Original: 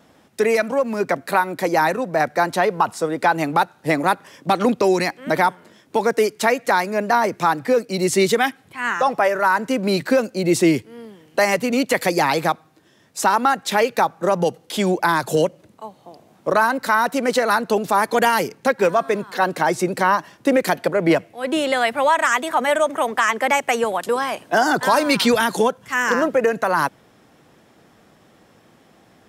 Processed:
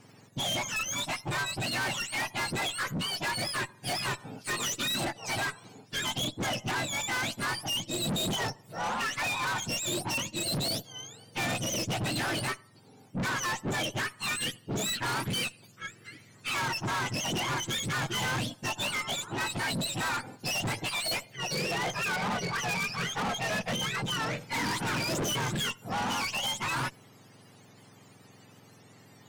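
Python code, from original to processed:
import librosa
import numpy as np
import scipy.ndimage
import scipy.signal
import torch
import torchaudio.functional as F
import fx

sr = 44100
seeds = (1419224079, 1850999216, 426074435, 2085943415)

y = fx.octave_mirror(x, sr, pivot_hz=1200.0)
y = fx.tube_stage(y, sr, drive_db=29.0, bias=0.3)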